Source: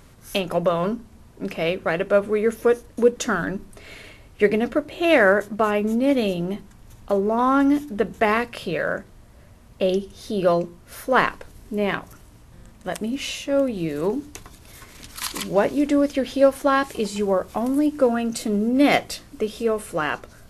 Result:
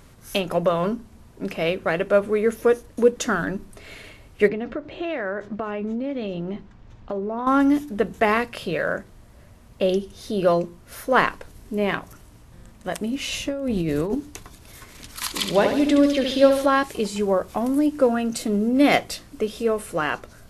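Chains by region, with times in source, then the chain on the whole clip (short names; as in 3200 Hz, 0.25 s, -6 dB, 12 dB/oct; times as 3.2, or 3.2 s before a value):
4.48–7.47 compressor 5:1, threshold -24 dBFS + air absorption 170 m
13.32–14.15 low shelf 180 Hz +8 dB + negative-ratio compressor -24 dBFS
15.36–16.66 bell 3700 Hz +9.5 dB 0.89 oct + flutter echo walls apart 12 m, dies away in 0.63 s
whole clip: dry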